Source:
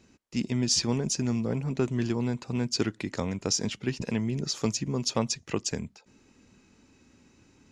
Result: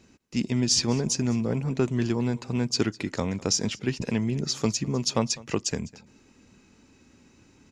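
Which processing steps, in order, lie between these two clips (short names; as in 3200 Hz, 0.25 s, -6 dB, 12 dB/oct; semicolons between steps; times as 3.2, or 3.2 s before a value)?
echo 0.203 s -21.5 dB; gain +2.5 dB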